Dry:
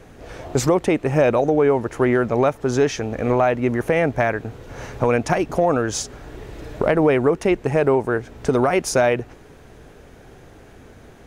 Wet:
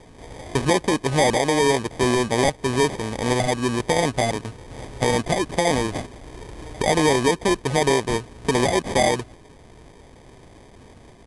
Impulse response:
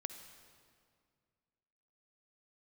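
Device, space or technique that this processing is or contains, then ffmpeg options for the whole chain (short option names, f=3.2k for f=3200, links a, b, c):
crushed at another speed: -af "asetrate=88200,aresample=44100,acrusher=samples=16:mix=1:aa=0.000001,asetrate=22050,aresample=44100,volume=-2dB"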